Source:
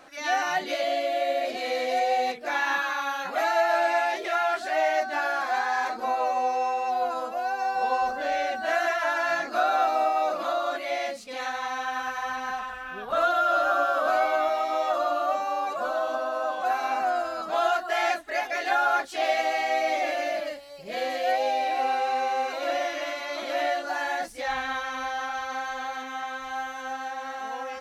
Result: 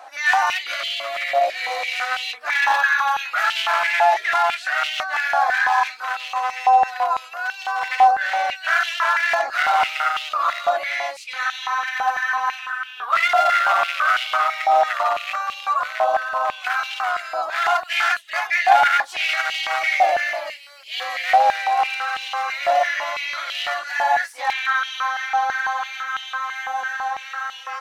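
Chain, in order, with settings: one-sided wavefolder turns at -22 dBFS; step-sequenced high-pass 6 Hz 770–3000 Hz; trim +3.5 dB

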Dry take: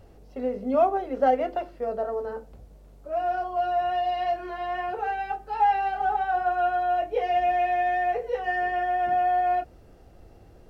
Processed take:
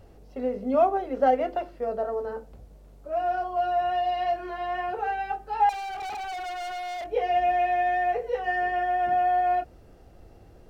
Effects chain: 5.69–7.09 s: overload inside the chain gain 32.5 dB

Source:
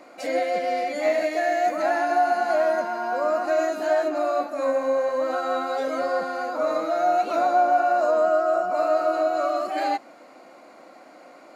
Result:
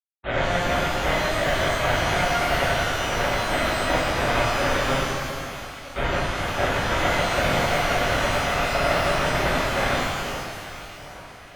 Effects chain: octave divider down 2 oct, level -6 dB; 0.58–1.06 s: band-stop 3 kHz, Q 24; 1.56–2.17 s: treble shelf 2.7 kHz -5 dB; 5.04–5.97 s: high-pass 1.3 kHz 12 dB/octave; compression 16:1, threshold -25 dBFS, peak gain reduction 10.5 dB; bit crusher 4-bit; Chebyshev shaper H 2 -19 dB, 3 -18 dB, 4 -32 dB, 7 -13 dB, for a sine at -16.5 dBFS; distance through air 230 m; echo whose repeats swap between lows and highs 417 ms, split 1.8 kHz, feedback 64%, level -10 dB; LPC vocoder at 8 kHz pitch kept; pitch-shifted reverb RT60 1.6 s, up +12 st, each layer -8 dB, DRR -9 dB

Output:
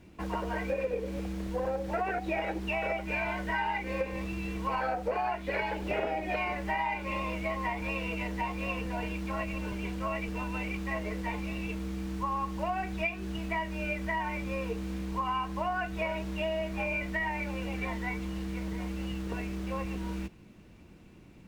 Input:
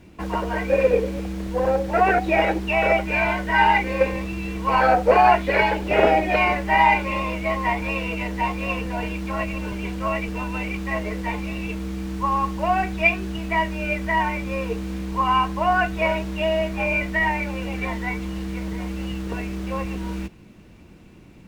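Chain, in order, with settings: compression, threshold -22 dBFS, peak gain reduction 11.5 dB; trim -6.5 dB

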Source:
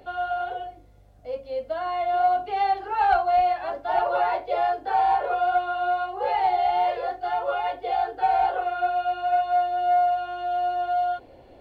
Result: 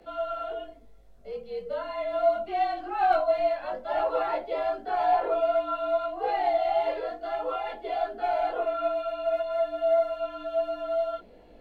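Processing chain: de-hum 74.83 Hz, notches 12; frequency shift -52 Hz; chorus voices 4, 0.72 Hz, delay 19 ms, depth 3 ms

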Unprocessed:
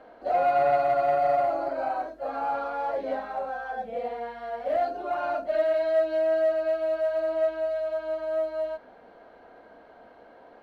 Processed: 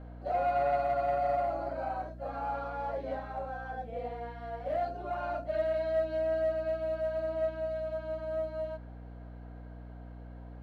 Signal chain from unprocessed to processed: hum 60 Hz, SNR 12 dB; trim -6.5 dB

